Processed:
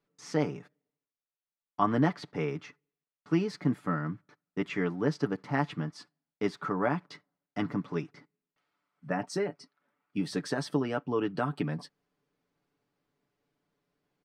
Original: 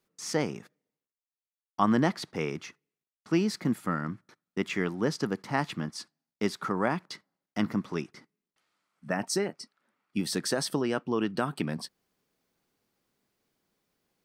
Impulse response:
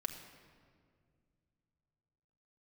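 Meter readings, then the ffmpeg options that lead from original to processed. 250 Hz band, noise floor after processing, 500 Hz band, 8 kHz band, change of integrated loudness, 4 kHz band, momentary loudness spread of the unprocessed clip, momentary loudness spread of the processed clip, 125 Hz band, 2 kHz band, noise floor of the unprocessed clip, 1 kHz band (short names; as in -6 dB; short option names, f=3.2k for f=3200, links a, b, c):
-1.5 dB, under -85 dBFS, -1.0 dB, -11.5 dB, -1.5 dB, -7.5 dB, 15 LU, 12 LU, +1.0 dB, -2.5 dB, under -85 dBFS, -1.0 dB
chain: -af "aemphasis=mode=reproduction:type=75fm,aecho=1:1:6.9:0.6,volume=-2.5dB"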